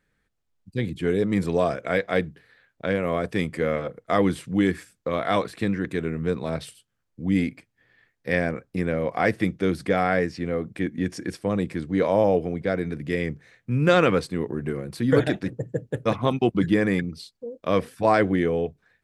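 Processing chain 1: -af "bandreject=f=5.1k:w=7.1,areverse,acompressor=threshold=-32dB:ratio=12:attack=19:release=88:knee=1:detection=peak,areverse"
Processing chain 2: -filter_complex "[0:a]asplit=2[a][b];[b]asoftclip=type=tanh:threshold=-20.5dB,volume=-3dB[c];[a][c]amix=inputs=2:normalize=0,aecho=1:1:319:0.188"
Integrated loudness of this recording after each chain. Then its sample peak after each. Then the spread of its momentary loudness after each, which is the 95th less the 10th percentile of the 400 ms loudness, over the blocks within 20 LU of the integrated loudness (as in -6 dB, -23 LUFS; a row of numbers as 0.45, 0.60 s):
-35.0, -22.0 LUFS; -17.0, -4.0 dBFS; 5, 10 LU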